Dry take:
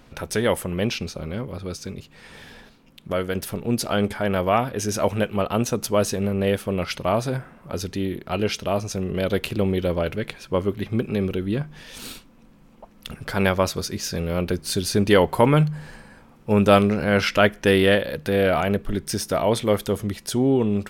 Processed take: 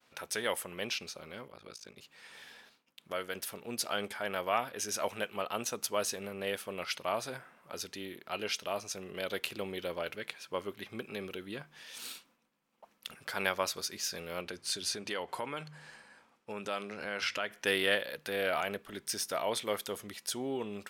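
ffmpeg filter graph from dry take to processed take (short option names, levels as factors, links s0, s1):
-filter_complex "[0:a]asettb=1/sr,asplit=3[s0][s1][s2];[s0]atrim=end=1.484[s3];[s1]atrim=start=1.48:end=1.97,asetpts=PTS-STARTPTS,afade=t=in:d=0.004:c=qsin,afade=t=out:st=0.486:d=0.004:c=qsin,highshelf=f=8400:g=-7,tremolo=f=54:d=0.947[s4];[s2]atrim=start=1.966[s5];[s3][s4]acrossfade=d=0.004:c1=hsin:c2=qsin[s6];[s6][s5]acrossfade=d=0.004:c1=qsin:c2=hsin,asettb=1/sr,asplit=3[s7][s8][s9];[s7]atrim=end=14.414[s10];[s8]atrim=start=14.41:end=17.51,asetpts=PTS-STARTPTS,afade=t=in:d=0.004:c=qsin,afade=t=out:st=3.096:d=0.004:c=qsin,lowpass=9400,bandreject=f=50:t=h:w=6,bandreject=f=100:t=h:w=6,bandreject=f=150:t=h:w=6,acompressor=threshold=0.0891:ratio=4:attack=3.2:release=140:knee=1:detection=peak[s11];[s9]atrim=start=17.506[s12];[s10][s11]acrossfade=d=0.004:c1=hsin:c2=qsin[s13];[s13][s12]acrossfade=d=0.004:c1=qsin:c2=hsin,highpass=f=1200:p=1,agate=range=0.0224:threshold=0.00158:ratio=3:detection=peak,volume=0.531"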